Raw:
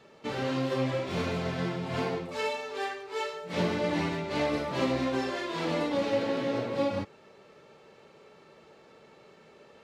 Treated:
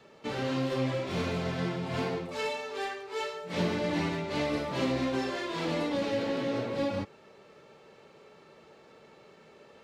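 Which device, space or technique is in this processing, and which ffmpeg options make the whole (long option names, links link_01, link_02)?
one-band saturation: -filter_complex "[0:a]acrossover=split=390|2200[link_01][link_02][link_03];[link_02]asoftclip=type=tanh:threshold=-30dB[link_04];[link_01][link_04][link_03]amix=inputs=3:normalize=0"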